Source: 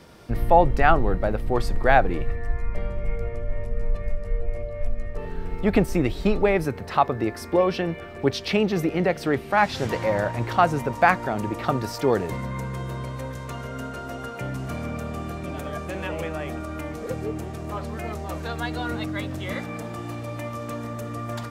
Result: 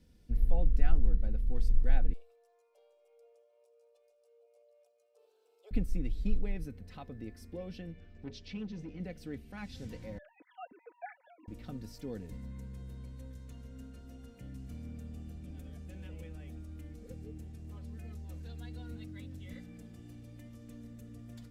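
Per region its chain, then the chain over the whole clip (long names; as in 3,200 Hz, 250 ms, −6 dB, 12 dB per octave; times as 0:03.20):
0:02.13–0:05.71: Butterworth high-pass 320 Hz 96 dB per octave + phaser with its sweep stopped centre 780 Hz, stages 4
0:07.92–0:09.00: low-pass filter 6,800 Hz 24 dB per octave + mains-hum notches 60/120/180/240/300/360/420/480/540/600 Hz + saturating transformer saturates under 780 Hz
0:10.18–0:11.48: three sine waves on the formant tracks + high-pass filter 500 Hz 6 dB per octave
whole clip: guitar amp tone stack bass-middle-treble 10-0-1; notch filter 1,200 Hz, Q 14; comb filter 4 ms, depth 53%; level +1 dB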